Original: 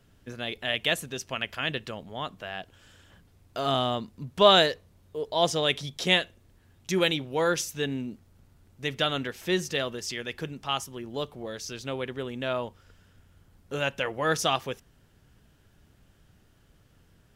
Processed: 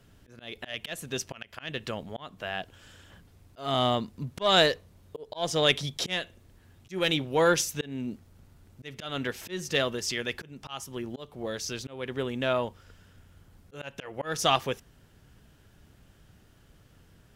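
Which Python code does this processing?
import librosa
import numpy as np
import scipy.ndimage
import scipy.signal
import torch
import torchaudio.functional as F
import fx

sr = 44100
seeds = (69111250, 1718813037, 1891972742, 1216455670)

y = fx.cheby_harmonics(x, sr, harmonics=(4,), levels_db=(-23,), full_scale_db=-4.0)
y = fx.auto_swell(y, sr, attack_ms=294.0)
y = y * 10.0 ** (3.0 / 20.0)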